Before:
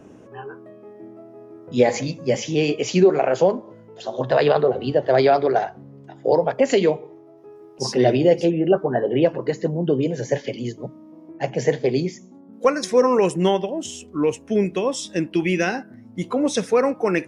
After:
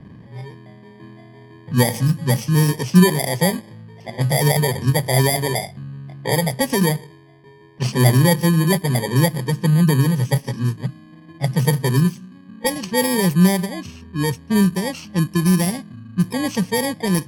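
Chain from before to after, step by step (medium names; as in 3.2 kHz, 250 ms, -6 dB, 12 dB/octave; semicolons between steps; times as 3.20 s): bit-reversed sample order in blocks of 32 samples; resonant low shelf 230 Hz +11.5 dB, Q 1.5; level-controlled noise filter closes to 2.6 kHz, open at -12 dBFS; trim -1 dB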